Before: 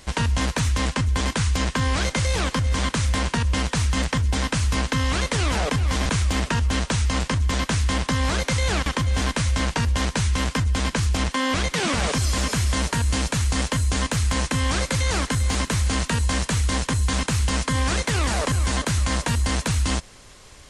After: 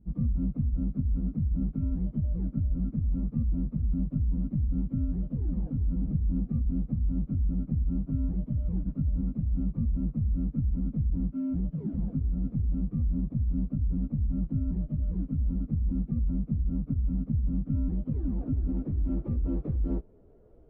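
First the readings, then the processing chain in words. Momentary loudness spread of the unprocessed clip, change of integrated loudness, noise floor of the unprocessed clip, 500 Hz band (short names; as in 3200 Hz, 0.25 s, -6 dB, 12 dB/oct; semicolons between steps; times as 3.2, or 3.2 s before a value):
1 LU, -7.5 dB, -43 dBFS, -19.0 dB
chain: inharmonic rescaling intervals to 118%; low-pass sweep 210 Hz -> 440 Hz, 17.63–20.37; gain -4.5 dB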